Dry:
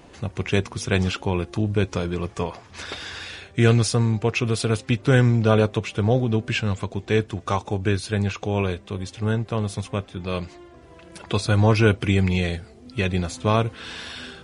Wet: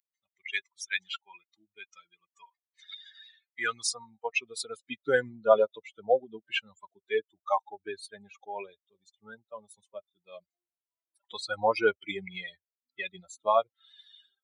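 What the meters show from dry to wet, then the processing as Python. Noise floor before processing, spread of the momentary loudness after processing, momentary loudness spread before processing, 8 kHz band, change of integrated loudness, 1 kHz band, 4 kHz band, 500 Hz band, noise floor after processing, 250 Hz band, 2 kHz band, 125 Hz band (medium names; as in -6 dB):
-48 dBFS, 21 LU, 14 LU, -6.0 dB, -7.5 dB, -3.0 dB, -8.0 dB, -5.5 dB, under -85 dBFS, -22.5 dB, -5.5 dB, -34.5 dB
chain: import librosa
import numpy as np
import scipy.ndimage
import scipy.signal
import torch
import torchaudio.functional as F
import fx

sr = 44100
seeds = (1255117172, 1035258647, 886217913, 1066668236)

y = fx.bin_expand(x, sr, power=3.0)
y = fx.filter_sweep_highpass(y, sr, from_hz=1900.0, to_hz=590.0, start_s=2.91, end_s=4.61, q=2.3)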